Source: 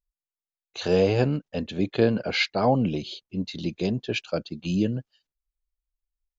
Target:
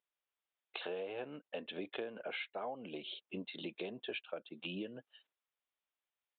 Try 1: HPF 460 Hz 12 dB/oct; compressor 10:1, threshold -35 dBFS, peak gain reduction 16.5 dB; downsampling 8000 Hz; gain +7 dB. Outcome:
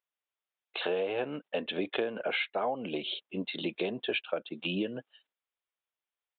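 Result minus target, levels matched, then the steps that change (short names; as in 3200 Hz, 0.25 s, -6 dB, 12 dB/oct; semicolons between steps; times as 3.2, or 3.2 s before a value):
compressor: peak gain reduction -10.5 dB
change: compressor 10:1, threshold -46.5 dBFS, peak gain reduction 27 dB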